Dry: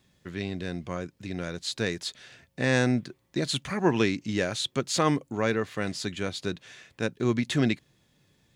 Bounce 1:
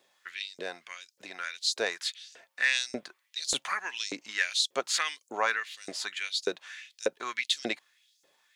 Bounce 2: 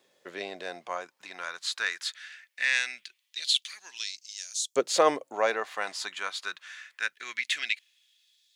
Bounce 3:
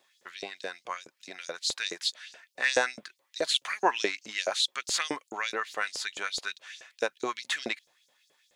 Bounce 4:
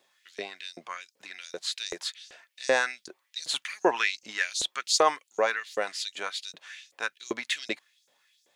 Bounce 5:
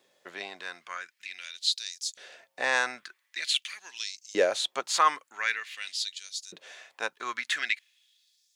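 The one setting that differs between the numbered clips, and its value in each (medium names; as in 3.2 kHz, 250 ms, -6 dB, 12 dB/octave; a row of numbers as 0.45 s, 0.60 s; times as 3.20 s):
LFO high-pass, rate: 1.7 Hz, 0.21 Hz, 4.7 Hz, 2.6 Hz, 0.46 Hz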